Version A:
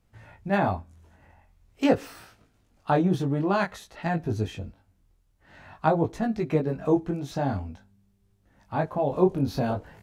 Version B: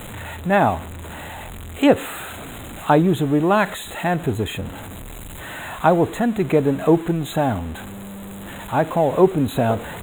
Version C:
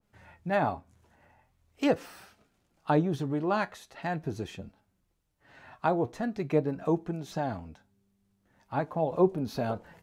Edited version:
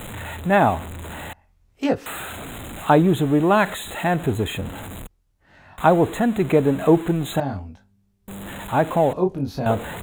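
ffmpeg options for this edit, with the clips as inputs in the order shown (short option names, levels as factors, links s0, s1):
-filter_complex "[0:a]asplit=4[s0][s1][s2][s3];[1:a]asplit=5[s4][s5][s6][s7][s8];[s4]atrim=end=1.332[s9];[s0]atrim=start=1.328:end=2.062[s10];[s5]atrim=start=2.058:end=5.072[s11];[s1]atrim=start=5.068:end=5.782[s12];[s6]atrim=start=5.778:end=7.402[s13];[s2]atrim=start=7.398:end=8.282[s14];[s7]atrim=start=8.278:end=9.132[s15];[s3]atrim=start=9.128:end=9.662[s16];[s8]atrim=start=9.658[s17];[s9][s10]acrossfade=d=0.004:c1=hsin:c2=hsin[s18];[s18][s11]acrossfade=d=0.004:c1=hsin:c2=hsin[s19];[s19][s12]acrossfade=d=0.004:c1=hsin:c2=hsin[s20];[s20][s13]acrossfade=d=0.004:c1=hsin:c2=hsin[s21];[s21][s14]acrossfade=d=0.004:c1=hsin:c2=hsin[s22];[s22][s15]acrossfade=d=0.004:c1=hsin:c2=hsin[s23];[s23][s16]acrossfade=d=0.004:c1=hsin:c2=hsin[s24];[s24][s17]acrossfade=d=0.004:c1=hsin:c2=hsin"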